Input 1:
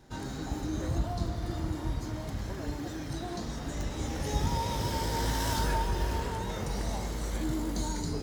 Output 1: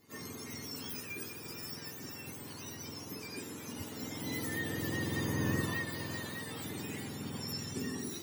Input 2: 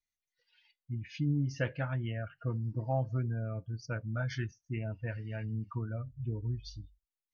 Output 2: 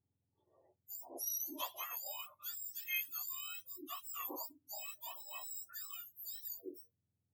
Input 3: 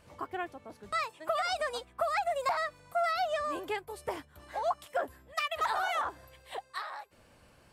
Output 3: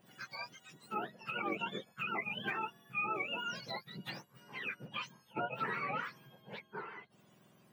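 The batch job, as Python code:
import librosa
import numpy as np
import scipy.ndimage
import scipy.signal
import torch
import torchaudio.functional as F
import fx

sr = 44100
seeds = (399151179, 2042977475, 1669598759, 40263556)

y = fx.octave_mirror(x, sr, pivot_hz=1300.0)
y = y * 10.0 ** (-3.5 / 20.0)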